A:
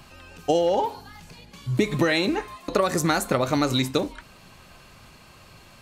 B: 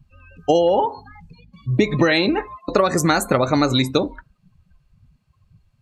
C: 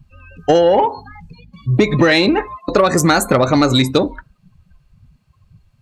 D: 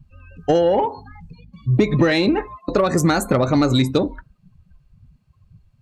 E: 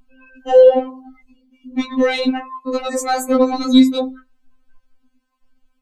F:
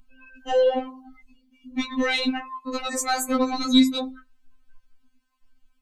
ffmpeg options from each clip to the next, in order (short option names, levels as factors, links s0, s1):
-af "afftdn=nr=31:nf=-37,volume=1.78"
-af "acontrast=72,volume=0.891"
-af "lowshelf=f=470:g=6.5,volume=0.422"
-af "afftfilt=real='re*3.46*eq(mod(b,12),0)':imag='im*3.46*eq(mod(b,12),0)':win_size=2048:overlap=0.75,volume=1.33"
-af "equalizer=f=440:t=o:w=1.8:g=-12"